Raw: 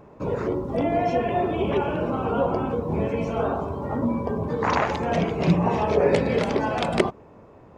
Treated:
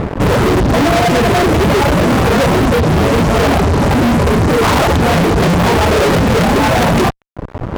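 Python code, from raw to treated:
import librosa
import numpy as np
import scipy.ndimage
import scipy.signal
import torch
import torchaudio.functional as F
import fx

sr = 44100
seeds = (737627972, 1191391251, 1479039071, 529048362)

y = fx.dereverb_blind(x, sr, rt60_s=0.83)
y = fx.tilt_eq(y, sr, slope=-3.0)
y = fx.fuzz(y, sr, gain_db=41.0, gate_db=-45.0)
y = y * librosa.db_to_amplitude(3.0)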